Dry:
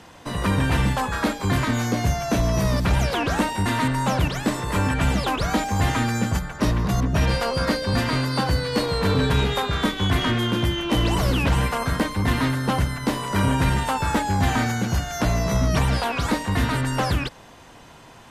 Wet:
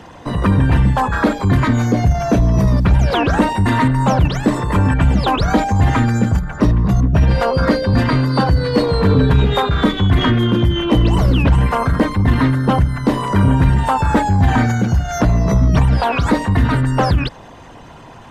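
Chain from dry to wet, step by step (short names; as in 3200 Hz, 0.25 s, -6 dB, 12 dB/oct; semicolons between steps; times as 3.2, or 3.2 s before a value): formant sharpening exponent 1.5; gain +8 dB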